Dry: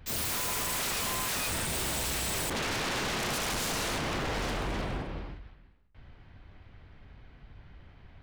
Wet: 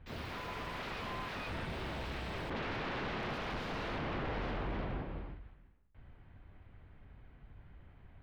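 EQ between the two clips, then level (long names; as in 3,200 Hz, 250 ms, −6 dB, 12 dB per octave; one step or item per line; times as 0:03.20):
high-frequency loss of the air 340 metres
−4.0 dB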